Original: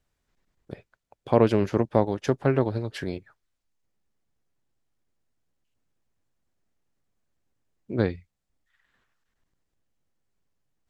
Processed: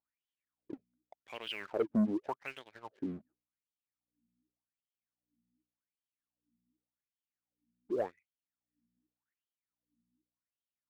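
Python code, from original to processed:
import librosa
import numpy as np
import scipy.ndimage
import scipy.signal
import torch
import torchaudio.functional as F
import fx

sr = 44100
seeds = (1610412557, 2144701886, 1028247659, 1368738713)

y = fx.add_hum(x, sr, base_hz=60, snr_db=31)
y = fx.wah_lfo(y, sr, hz=0.87, low_hz=210.0, high_hz=3200.0, q=11.0)
y = fx.leveller(y, sr, passes=2)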